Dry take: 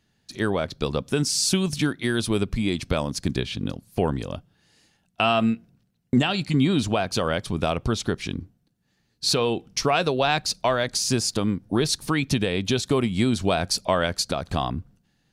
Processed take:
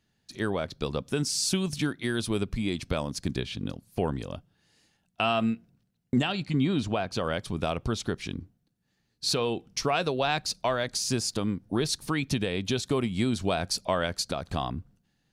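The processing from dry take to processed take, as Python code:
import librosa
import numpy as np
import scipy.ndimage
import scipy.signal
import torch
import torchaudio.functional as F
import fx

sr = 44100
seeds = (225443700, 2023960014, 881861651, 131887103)

y = fx.high_shelf(x, sr, hz=6500.0, db=-10.5, at=(6.32, 7.24))
y = F.gain(torch.from_numpy(y), -5.0).numpy()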